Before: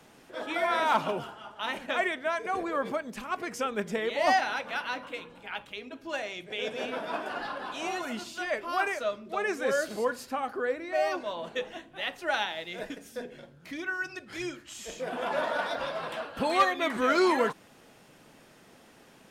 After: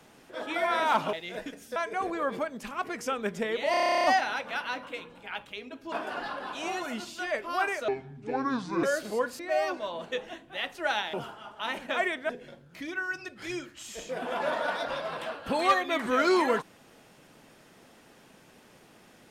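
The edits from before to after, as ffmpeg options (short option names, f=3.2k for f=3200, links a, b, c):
-filter_complex "[0:a]asplit=20[a][b][c][d][e][f][g][h][i][j][k][l][m][n][o][p][q][r][s][t];[a]atrim=end=1.132[u];[b]atrim=start=12.568:end=13.202[v];[c]atrim=start=2.288:end=4.272[w];[d]atrim=start=4.238:end=4.272[x];[e]atrim=start=4.238:end=4.272[y];[f]atrim=start=4.238:end=4.272[z];[g]atrim=start=4.238:end=4.272[aa];[h]atrim=start=4.238:end=4.272[ab];[i]atrim=start=4.238:end=4.272[ac];[j]atrim=start=4.238:end=4.272[ad];[k]atrim=start=4.238:end=4.272[ae];[l]atrim=start=4.238:end=4.272[af];[m]atrim=start=4.238:end=4.272[ag];[n]atrim=start=4.238:end=6.122[ah];[o]atrim=start=7.108:end=9.074[ai];[p]atrim=start=9.07:end=9.69,asetpts=PTS-STARTPTS,asetrate=28665,aresample=44100[aj];[q]atrim=start=9.686:end=10.252[ak];[r]atrim=start=10.828:end=12.572[al];[s]atrim=start=1.128:end=2.292[am];[t]atrim=start=13.198[an];[u][v]acrossfade=d=0.004:c1=hsin:c2=hsin[ao];[ao][w]acrossfade=d=0.004:c1=hsin:c2=hsin[ap];[ap][x]acrossfade=d=0.004:c1=hsin:c2=hsin[aq];[aq][y]acrossfade=d=0.004:c1=hsin:c2=hsin[ar];[ar][z]acrossfade=d=0.004:c1=hsin:c2=hsin[as];[as][aa]acrossfade=d=0.004:c1=hsin:c2=hsin[at];[at][ab]acrossfade=d=0.004:c1=hsin:c2=hsin[au];[au][ac]acrossfade=d=0.004:c1=hsin:c2=hsin[av];[av][ad]acrossfade=d=0.004:c1=hsin:c2=hsin[aw];[aw][ae]acrossfade=d=0.004:c1=hsin:c2=hsin[ax];[ax][af]acrossfade=d=0.004:c1=hsin:c2=hsin[ay];[ay][ag]acrossfade=d=0.004:c1=hsin:c2=hsin[az];[az][ah]acrossfade=d=0.004:c1=hsin:c2=hsin[ba];[ba][ai]acrossfade=d=0.004:c1=hsin:c2=hsin[bb];[bb][aj]acrossfade=d=0.004:c1=hsin:c2=hsin[bc];[bc][ak]acrossfade=d=0.004:c1=hsin:c2=hsin[bd];[bd][al]acrossfade=d=0.004:c1=hsin:c2=hsin[be];[be][am]acrossfade=d=0.004:c1=hsin:c2=hsin[bf];[bf][an]acrossfade=d=0.004:c1=hsin:c2=hsin"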